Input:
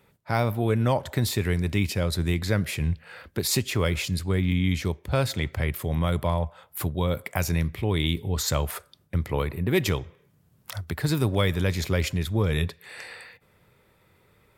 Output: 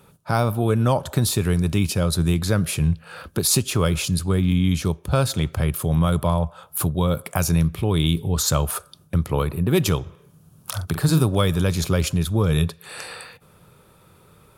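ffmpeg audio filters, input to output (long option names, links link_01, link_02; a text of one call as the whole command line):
ffmpeg -i in.wav -filter_complex "[0:a]equalizer=frequency=160:width_type=o:width=0.33:gain=6,equalizer=frequency=1250:width_type=o:width=0.33:gain=5,equalizer=frequency=2000:width_type=o:width=0.33:gain=-12,equalizer=frequency=6300:width_type=o:width=0.33:gain=3,equalizer=frequency=10000:width_type=o:width=0.33:gain=9,asplit=2[link_01][link_02];[link_02]acompressor=threshold=-36dB:ratio=6,volume=-0.5dB[link_03];[link_01][link_03]amix=inputs=2:normalize=0,asettb=1/sr,asplit=3[link_04][link_05][link_06];[link_04]atrim=end=10.024[link_07];[link_05]atrim=start=10.02:end=11.24,asetpts=PTS-STARTPTS,afade=type=in:duration=0.004:curve=qsin,afade=type=out:start_time=1.216:duration=0.004:curve=qsin,asplit=2[link_08][link_09];[link_09]adelay=44,volume=-8.5dB[link_10];[link_08][link_10]amix=inputs=2:normalize=0,atrim=end_sample=53802[link_11];[link_06]atrim=start=11.236[link_12];[link_07][link_11]acrossfade=duration=0.004:curve1=hsin:curve2=qsin[link_13];[link_13][link_12]acrossfade=duration=0.004:curve1=qsin:curve2=hsin,volume=2dB" out.wav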